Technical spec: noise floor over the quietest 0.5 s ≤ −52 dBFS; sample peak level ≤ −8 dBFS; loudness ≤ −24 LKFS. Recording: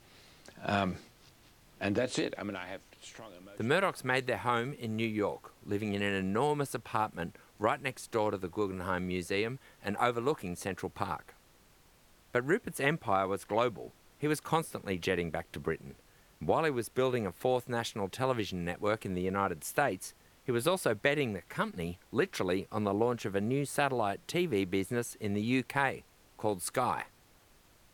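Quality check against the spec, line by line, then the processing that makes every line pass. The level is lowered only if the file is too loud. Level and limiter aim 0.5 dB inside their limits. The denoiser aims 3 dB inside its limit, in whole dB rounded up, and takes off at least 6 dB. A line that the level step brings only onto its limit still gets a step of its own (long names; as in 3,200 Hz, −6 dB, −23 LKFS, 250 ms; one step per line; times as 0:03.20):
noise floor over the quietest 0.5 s −62 dBFS: in spec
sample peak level −13.0 dBFS: in spec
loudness −33.0 LKFS: in spec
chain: no processing needed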